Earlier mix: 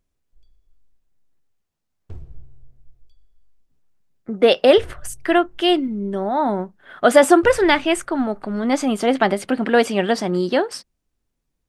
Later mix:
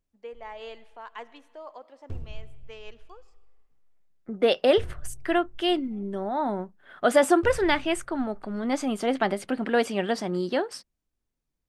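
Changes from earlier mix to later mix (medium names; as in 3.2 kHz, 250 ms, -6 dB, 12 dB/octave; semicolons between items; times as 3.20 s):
first voice: unmuted; second voice -7.5 dB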